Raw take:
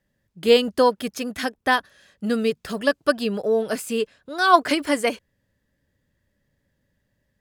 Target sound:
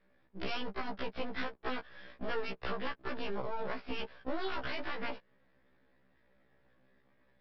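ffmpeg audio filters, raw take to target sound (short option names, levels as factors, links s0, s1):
-filter_complex "[0:a]afftfilt=real='re*lt(hypot(re,im),0.447)':imag='im*lt(hypot(re,im),0.447)':win_size=1024:overlap=0.75,acrossover=split=220 2200:gain=0.2 1 0.0708[s0][s1][s2];[s0][s1][s2]amix=inputs=3:normalize=0,alimiter=level_in=1.19:limit=0.0631:level=0:latency=1:release=128,volume=0.841,acompressor=threshold=0.00891:ratio=6,aresample=11025,aeval=exprs='max(val(0),0)':c=same,aresample=44100,afftfilt=real='re*1.73*eq(mod(b,3),0)':imag='im*1.73*eq(mod(b,3),0)':win_size=2048:overlap=0.75,volume=4.22"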